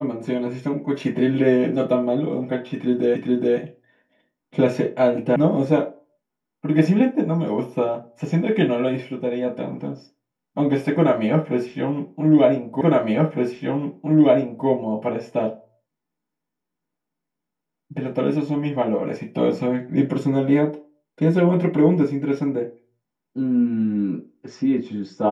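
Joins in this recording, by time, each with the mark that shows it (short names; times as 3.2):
3.16 repeat of the last 0.42 s
5.36 sound cut off
12.81 repeat of the last 1.86 s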